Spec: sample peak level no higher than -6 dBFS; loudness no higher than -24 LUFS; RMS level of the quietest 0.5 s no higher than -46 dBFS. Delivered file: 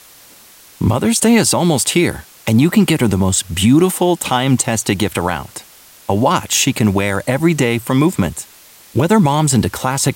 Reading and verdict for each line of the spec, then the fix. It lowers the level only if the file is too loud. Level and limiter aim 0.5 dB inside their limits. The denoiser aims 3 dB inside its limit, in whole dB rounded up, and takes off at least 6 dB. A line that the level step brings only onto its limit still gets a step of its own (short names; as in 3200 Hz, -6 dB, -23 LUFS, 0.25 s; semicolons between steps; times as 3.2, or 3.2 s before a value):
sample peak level -2.5 dBFS: fail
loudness -15.0 LUFS: fail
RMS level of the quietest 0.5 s -43 dBFS: fail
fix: gain -9.5 dB